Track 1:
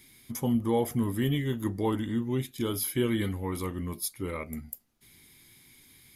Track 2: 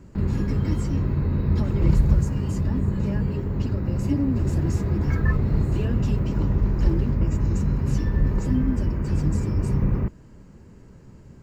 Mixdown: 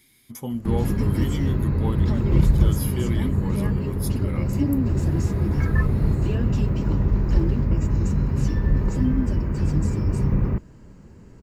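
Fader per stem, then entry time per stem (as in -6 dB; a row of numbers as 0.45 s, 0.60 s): -2.5 dB, +1.0 dB; 0.00 s, 0.50 s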